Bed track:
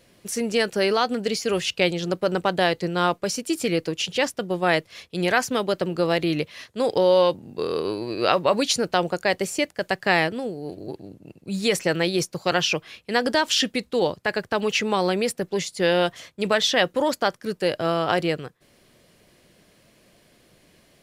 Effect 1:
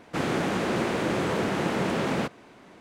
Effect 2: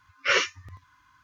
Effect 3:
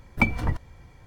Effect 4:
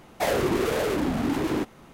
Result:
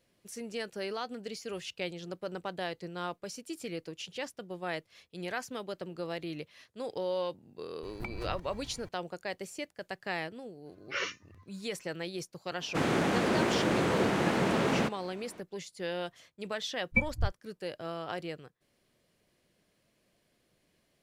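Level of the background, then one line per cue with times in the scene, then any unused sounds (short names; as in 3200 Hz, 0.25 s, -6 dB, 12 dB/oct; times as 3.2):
bed track -15.5 dB
7.83 add 3 -0.5 dB + compressor, threshold -36 dBFS
10.66 add 2 -12 dB
12.61 add 1 -1.5 dB
16.75 add 3 -7.5 dB + spectral expander 2.5:1
not used: 4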